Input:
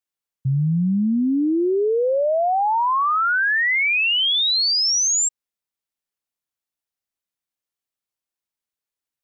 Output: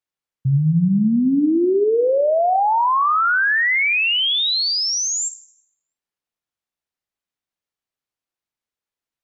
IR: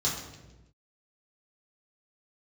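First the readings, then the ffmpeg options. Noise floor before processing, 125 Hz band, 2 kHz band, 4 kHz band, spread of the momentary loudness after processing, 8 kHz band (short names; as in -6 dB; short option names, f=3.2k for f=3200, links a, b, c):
under -85 dBFS, +3.0 dB, +1.5 dB, -0.5 dB, 4 LU, n/a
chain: -filter_complex "[0:a]lowpass=f=3.8k:p=1,asplit=2[a][b];[1:a]atrim=start_sample=2205,adelay=46[c];[b][c]afir=irnorm=-1:irlink=0,volume=-23.5dB[d];[a][d]amix=inputs=2:normalize=0,volume=2.5dB"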